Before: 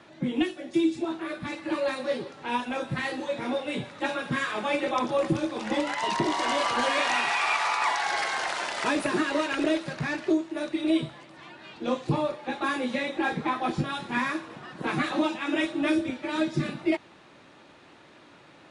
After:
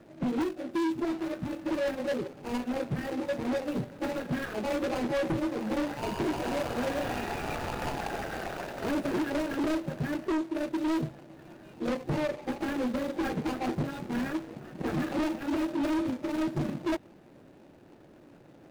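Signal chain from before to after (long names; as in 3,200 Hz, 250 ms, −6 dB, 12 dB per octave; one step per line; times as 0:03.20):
running median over 41 samples
gain into a clipping stage and back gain 29 dB
level +3 dB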